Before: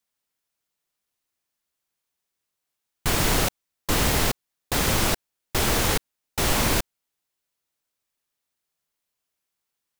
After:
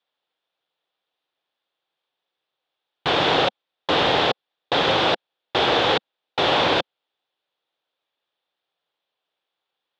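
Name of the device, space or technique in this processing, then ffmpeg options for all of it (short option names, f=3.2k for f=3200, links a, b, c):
kitchen radio: -af "highpass=210,equalizer=f=220:t=q:w=4:g=-10,equalizer=f=520:t=q:w=4:g=5,equalizer=f=780:t=q:w=4:g=5,equalizer=f=2.1k:t=q:w=4:g=-4,equalizer=f=3.5k:t=q:w=4:g=8,lowpass=f=3.7k:w=0.5412,lowpass=f=3.7k:w=1.3066,volume=5dB"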